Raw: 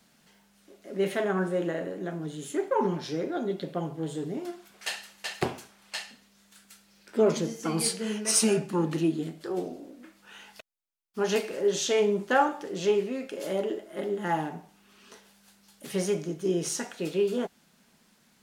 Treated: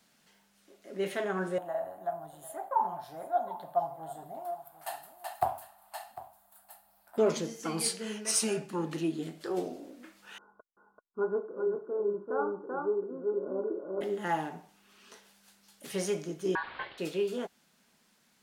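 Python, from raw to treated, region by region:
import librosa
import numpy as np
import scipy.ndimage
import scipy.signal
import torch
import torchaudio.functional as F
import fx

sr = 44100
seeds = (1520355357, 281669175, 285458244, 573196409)

y = fx.chain(x, sr, fx.curve_eq(hz=(100.0, 160.0, 470.0, 690.0, 2300.0, 4200.0, 6000.0, 8800.0, 14000.0), db=(0, -14, -21, 10, -19, -16, -21, -6, 7)),
    fx.echo_single(ms=750, db=-16.0), at=(1.58, 7.18))
y = fx.chain(y, sr, fx.cheby_ripple(hz=1500.0, ripple_db=9),
    fx.echo_single(ms=386, db=-3.0), at=(10.38, 14.01))
y = fx.chain(y, sr, fx.delta_mod(bps=16000, step_db=-42.5),
    fx.ring_mod(carrier_hz=1300.0), at=(16.55, 16.98))
y = fx.rider(y, sr, range_db=3, speed_s=0.5)
y = fx.low_shelf(y, sr, hz=310.0, db=-6.0)
y = y * 10.0 ** (-2.0 / 20.0)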